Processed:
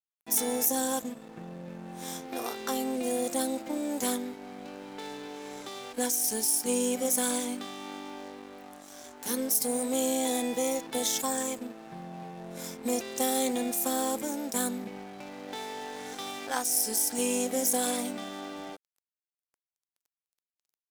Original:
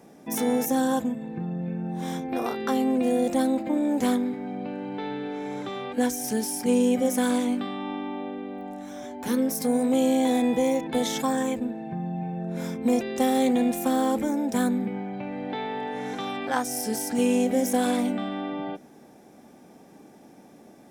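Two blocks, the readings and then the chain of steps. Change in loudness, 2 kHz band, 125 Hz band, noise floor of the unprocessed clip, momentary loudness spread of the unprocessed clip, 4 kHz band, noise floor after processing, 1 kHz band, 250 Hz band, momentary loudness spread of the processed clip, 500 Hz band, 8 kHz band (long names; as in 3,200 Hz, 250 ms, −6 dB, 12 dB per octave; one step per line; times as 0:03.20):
−3.0 dB, −4.5 dB, −12.5 dB, −51 dBFS, 11 LU, +0.5 dB, below −85 dBFS, −5.5 dB, −9.5 dB, 17 LU, −6.0 dB, +6.0 dB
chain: dead-zone distortion −41 dBFS
bass and treble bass −8 dB, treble +13 dB
level −4.5 dB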